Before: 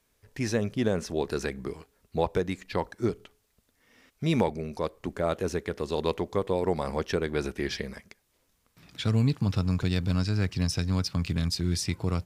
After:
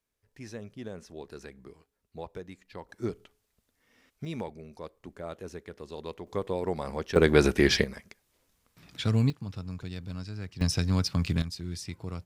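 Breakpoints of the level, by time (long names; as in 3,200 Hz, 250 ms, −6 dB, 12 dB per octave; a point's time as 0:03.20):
−14 dB
from 0:02.89 −5 dB
from 0:04.25 −11.5 dB
from 0:06.27 −4 dB
from 0:07.16 +9 dB
from 0:07.84 −0.5 dB
from 0:09.30 −11.5 dB
from 0:10.61 +1 dB
from 0:11.42 −9 dB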